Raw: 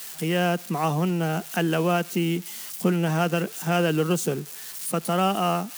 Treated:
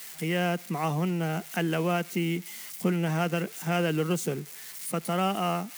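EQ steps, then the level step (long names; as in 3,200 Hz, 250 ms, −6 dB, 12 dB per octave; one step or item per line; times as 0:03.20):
low-shelf EQ 140 Hz +3.5 dB
parametric band 2,100 Hz +8 dB 0.28 octaves
−5.0 dB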